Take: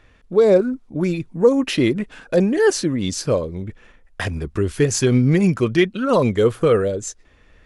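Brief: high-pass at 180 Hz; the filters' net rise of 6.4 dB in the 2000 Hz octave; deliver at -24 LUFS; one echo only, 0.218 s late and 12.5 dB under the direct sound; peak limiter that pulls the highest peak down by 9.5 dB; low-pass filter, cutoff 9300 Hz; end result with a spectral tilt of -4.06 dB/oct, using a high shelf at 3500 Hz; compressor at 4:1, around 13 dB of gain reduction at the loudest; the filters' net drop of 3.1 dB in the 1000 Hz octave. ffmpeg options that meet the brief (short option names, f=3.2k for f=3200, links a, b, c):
-af "highpass=180,lowpass=9.3k,equalizer=f=1k:t=o:g=-7.5,equalizer=f=2k:t=o:g=7,highshelf=f=3.5k:g=8.5,acompressor=threshold=-26dB:ratio=4,alimiter=limit=-21dB:level=0:latency=1,aecho=1:1:218:0.237,volume=7dB"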